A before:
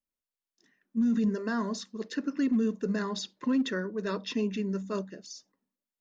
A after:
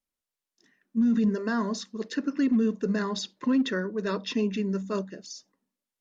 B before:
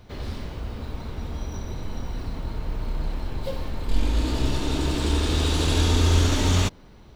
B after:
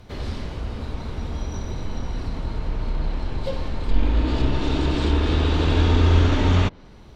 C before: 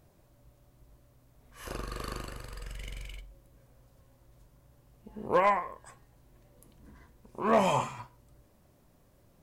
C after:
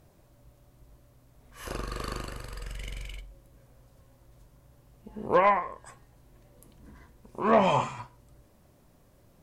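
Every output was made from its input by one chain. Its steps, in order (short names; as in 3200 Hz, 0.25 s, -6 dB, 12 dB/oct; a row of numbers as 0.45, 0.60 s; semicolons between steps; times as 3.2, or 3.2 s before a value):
treble ducked by the level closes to 2700 Hz, closed at -18 dBFS; gain +3 dB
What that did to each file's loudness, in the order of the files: +3.0, +2.5, +3.0 LU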